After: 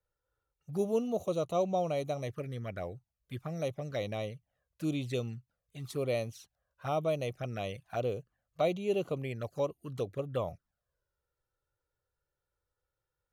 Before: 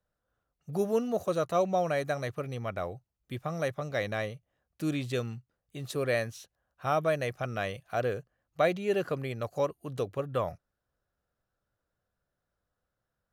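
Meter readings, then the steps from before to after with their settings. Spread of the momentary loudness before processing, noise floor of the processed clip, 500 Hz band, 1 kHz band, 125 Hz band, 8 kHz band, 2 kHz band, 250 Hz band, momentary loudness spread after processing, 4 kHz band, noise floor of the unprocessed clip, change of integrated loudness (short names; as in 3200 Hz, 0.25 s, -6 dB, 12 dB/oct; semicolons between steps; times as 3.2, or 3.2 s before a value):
12 LU, under -85 dBFS, -3.0 dB, -5.0 dB, -1.5 dB, -4.0 dB, -9.5 dB, -2.0 dB, 12 LU, -3.0 dB, -85 dBFS, -3.0 dB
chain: envelope flanger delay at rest 2.2 ms, full sweep at -28.5 dBFS; gain -1.5 dB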